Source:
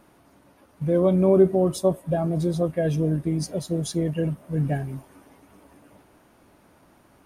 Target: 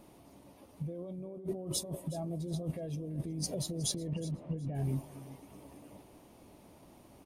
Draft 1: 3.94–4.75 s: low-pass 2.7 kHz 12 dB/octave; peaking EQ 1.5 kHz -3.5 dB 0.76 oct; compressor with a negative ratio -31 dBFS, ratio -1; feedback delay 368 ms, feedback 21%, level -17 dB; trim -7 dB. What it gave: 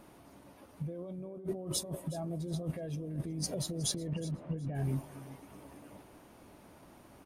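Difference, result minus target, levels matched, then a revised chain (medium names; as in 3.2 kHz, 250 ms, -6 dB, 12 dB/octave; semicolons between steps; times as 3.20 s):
2 kHz band +5.0 dB
3.94–4.75 s: low-pass 2.7 kHz 12 dB/octave; peaking EQ 1.5 kHz -12.5 dB 0.76 oct; compressor with a negative ratio -31 dBFS, ratio -1; feedback delay 368 ms, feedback 21%, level -17 dB; trim -7 dB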